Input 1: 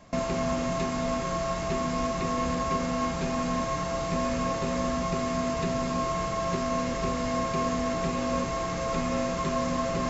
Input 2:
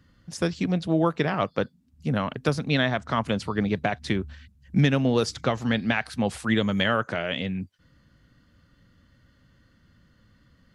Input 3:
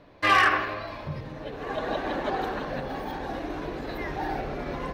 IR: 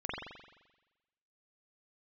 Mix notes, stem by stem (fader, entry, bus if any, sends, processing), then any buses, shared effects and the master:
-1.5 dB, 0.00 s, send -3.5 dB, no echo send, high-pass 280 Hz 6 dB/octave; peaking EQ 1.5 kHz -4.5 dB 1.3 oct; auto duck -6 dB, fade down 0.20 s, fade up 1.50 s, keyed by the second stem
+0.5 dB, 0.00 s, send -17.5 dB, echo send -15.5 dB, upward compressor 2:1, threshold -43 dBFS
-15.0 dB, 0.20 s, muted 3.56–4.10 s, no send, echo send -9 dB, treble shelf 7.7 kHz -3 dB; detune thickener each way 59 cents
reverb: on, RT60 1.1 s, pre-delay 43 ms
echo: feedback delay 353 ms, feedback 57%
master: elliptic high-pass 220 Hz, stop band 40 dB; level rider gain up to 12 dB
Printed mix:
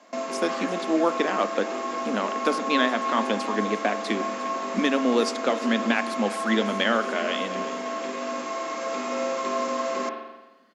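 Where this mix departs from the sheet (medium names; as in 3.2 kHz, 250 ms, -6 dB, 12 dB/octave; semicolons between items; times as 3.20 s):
stem 1: missing peaking EQ 1.5 kHz -4.5 dB 1.3 oct; stem 2: missing upward compressor 2:1, threshold -43 dBFS; master: missing level rider gain up to 12 dB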